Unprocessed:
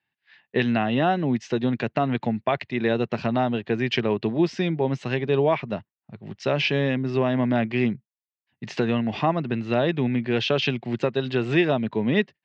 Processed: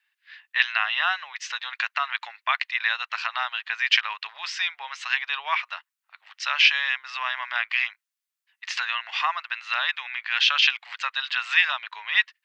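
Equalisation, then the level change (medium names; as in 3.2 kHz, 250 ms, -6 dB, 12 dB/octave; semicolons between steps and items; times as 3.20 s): steep high-pass 1.1 kHz 36 dB/octave; +8.0 dB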